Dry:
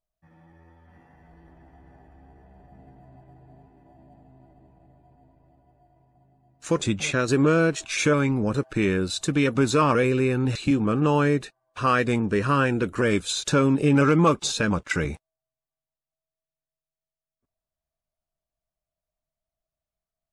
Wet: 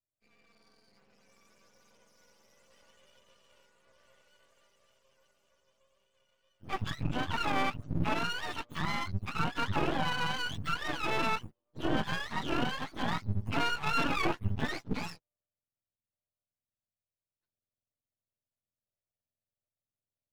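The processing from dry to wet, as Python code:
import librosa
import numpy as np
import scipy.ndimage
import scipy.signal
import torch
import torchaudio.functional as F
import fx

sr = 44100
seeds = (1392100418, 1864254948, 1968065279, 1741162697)

y = fx.octave_mirror(x, sr, pivot_hz=620.0)
y = np.maximum(y, 0.0)
y = y * 10.0 ** (-5.0 / 20.0)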